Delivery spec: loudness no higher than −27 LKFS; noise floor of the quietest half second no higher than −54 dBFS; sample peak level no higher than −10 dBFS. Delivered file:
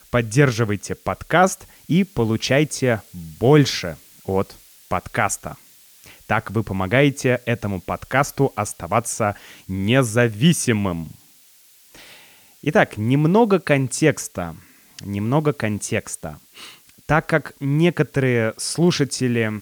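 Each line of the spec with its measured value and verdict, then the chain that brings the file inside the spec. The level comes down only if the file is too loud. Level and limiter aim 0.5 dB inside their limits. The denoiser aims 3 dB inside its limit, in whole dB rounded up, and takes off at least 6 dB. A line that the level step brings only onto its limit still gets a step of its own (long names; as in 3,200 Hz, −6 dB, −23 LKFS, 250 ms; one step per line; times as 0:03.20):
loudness −20.5 LKFS: out of spec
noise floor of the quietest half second −52 dBFS: out of spec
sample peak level −3.5 dBFS: out of spec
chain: level −7 dB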